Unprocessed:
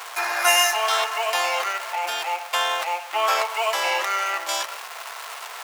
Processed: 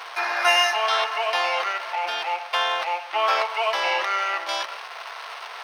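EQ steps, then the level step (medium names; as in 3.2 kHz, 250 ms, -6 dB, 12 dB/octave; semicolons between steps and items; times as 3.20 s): Savitzky-Golay filter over 15 samples; 0.0 dB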